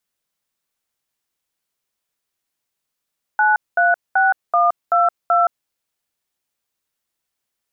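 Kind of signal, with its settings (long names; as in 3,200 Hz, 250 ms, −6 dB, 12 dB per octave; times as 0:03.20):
touch tones "936122", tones 170 ms, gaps 212 ms, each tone −14.5 dBFS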